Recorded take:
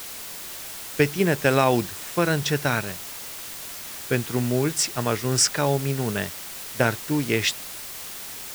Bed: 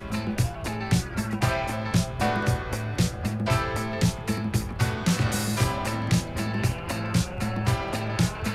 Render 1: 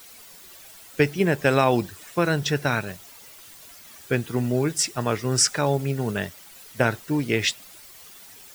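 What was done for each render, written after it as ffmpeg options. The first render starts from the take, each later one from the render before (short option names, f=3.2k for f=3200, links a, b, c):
-af "afftdn=nr=12:nf=-37"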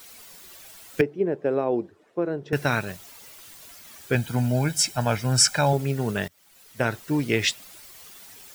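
-filter_complex "[0:a]asettb=1/sr,asplit=3[a][b][c];[a]atrim=end=1.014[d];[b]atrim=start=1.01:end=2.53,asetpts=PTS-STARTPTS,afade=t=in:d=0.004:c=qsin,afade=t=out:st=1.516:d=0.004:c=qsin,bandpass=f=400:t=q:w=1.7[e];[c]atrim=start=2.526[f];[d][e]acrossfade=d=0.004:c1=hsin:c2=qsin[g];[g][f]acrossfade=d=0.004:c1=qsin:c2=hsin,asettb=1/sr,asplit=3[h][i][j];[h]atrim=end=4.154[k];[i]atrim=start=4.15:end=5.73,asetpts=PTS-STARTPTS,afade=t=in:d=0.004:c=qsin,afade=t=out:st=1.576:d=0.004:c=qsin,aecho=1:1:1.3:0.7,atrim=end_sample=69678[l];[j]atrim=start=5.726[m];[k][l]acrossfade=d=0.004:c1=hsin:c2=qsin[n];[n][m]acrossfade=d=0.004:c1=qsin:c2=hsin,asplit=2[o][p];[o]atrim=end=6.28,asetpts=PTS-STARTPTS,afade=t=out:st=6.276:d=0.004:c=hsin:silence=0.0841395[q];[p]atrim=start=6.28,asetpts=PTS-STARTPTS,afade=t=in:d=0.86:silence=0.0841395[r];[q][r]concat=n=2:v=0:a=1"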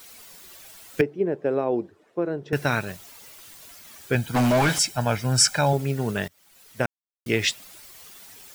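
-filter_complex "[0:a]asplit=3[a][b][c];[a]afade=t=out:st=4.34:d=0.02[d];[b]asplit=2[e][f];[f]highpass=f=720:p=1,volume=30dB,asoftclip=type=tanh:threshold=-12dB[g];[e][g]amix=inputs=2:normalize=0,lowpass=f=2.5k:p=1,volume=-6dB,afade=t=in:st=4.34:d=0.02,afade=t=out:st=4.78:d=0.02[h];[c]afade=t=in:st=4.78:d=0.02[i];[d][h][i]amix=inputs=3:normalize=0,asplit=3[j][k][l];[j]atrim=end=6.86,asetpts=PTS-STARTPTS,afade=t=out:st=6.856:d=0.004:c=hsin[m];[k]atrim=start=6.86:end=7.26,asetpts=PTS-STARTPTS,volume=0[n];[l]atrim=start=7.26,asetpts=PTS-STARTPTS,afade=t=in:d=0.004:c=hsin[o];[m][n][o]concat=n=3:v=0:a=1"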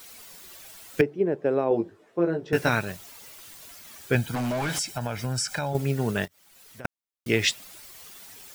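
-filter_complex "[0:a]asettb=1/sr,asplit=3[a][b][c];[a]atrim=end=1.694[d];[b]atrim=start=1.69:end=2.69,asetpts=PTS-STARTPTS,afade=t=in:d=0.004:c=qsin,afade=t=out:st=0.996:d=0.004:c=qsin,asplit=2[e][f];[f]adelay=18,volume=-3dB[g];[e][g]amix=inputs=2:normalize=0,atrim=end_sample=44100[h];[c]atrim=start=2.686[i];[d][h]acrossfade=d=0.004:c1=hsin:c2=qsin[j];[j][i]acrossfade=d=0.004:c1=qsin:c2=hsin,asettb=1/sr,asplit=3[k][l][m];[k]atrim=end=4.334[n];[l]atrim=start=4.33:end=5.75,asetpts=PTS-STARTPTS,afade=t=in:d=0.004:c=qsin,afade=t=out:st=1.416:d=0.004:c=qsin,acompressor=threshold=-25dB:ratio=6:attack=3.2:release=140:knee=1:detection=peak[o];[m]atrim=start=5.746[p];[n][o]acrossfade=d=0.004:c1=hsin:c2=qsin[q];[q][p]acrossfade=d=0.004:c1=qsin:c2=hsin,asettb=1/sr,asplit=3[r][s][t];[r]atrim=end=6.254[u];[s]atrim=start=6.25:end=6.85,asetpts=PTS-STARTPTS,afade=t=in:d=0.004:c=qsin,afade=t=out:st=0.596:d=0.004:c=qsin,acompressor=threshold=-45dB:ratio=3:attack=3.2:release=140:knee=1:detection=peak[v];[t]atrim=start=6.846[w];[u][v]acrossfade=d=0.004:c1=hsin:c2=qsin[x];[x][w]acrossfade=d=0.004:c1=qsin:c2=hsin"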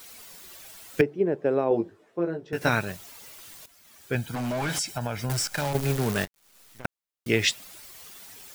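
-filter_complex "[0:a]asettb=1/sr,asplit=3[a][b][c];[a]atrim=end=5.294[d];[b]atrim=start=5.29:end=6.85,asetpts=PTS-STARTPTS,afade=t=in:d=0.004:c=qsin,afade=t=out:st=1.556:d=0.004:c=qsin,acrusher=bits=6:dc=4:mix=0:aa=0.000001[e];[c]atrim=start=6.846[f];[d][e]acrossfade=d=0.004:c1=hsin:c2=qsin[g];[g][f]acrossfade=d=0.004:c1=qsin:c2=hsin,asplit=3[h][i][j];[h]atrim=end=2.61,asetpts=PTS-STARTPTS,afade=t=out:st=1.76:d=0.85:silence=0.398107[k];[i]atrim=start=2.61:end=3.66,asetpts=PTS-STARTPTS,afade=t=in:d=0.004:c=hsin:silence=0.398107,afade=t=out:st=1.046:d=0.004:c=hsin:silence=0.211349[l];[j]atrim=start=3.66,asetpts=PTS-STARTPTS,afade=t=in:d=1.05:silence=0.211349[m];[k][l][m]concat=n=3:v=0:a=1"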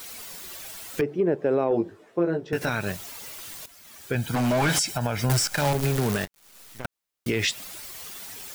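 -af "acontrast=62,alimiter=limit=-14.5dB:level=0:latency=1:release=103"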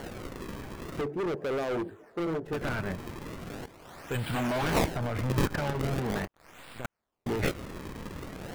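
-filter_complex "[0:a]acrossover=split=2100[a][b];[a]asoftclip=type=hard:threshold=-28.5dB[c];[b]acrusher=samples=35:mix=1:aa=0.000001:lfo=1:lforange=56:lforate=0.41[d];[c][d]amix=inputs=2:normalize=0"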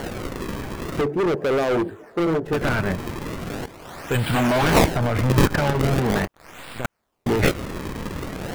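-af "volume=10dB"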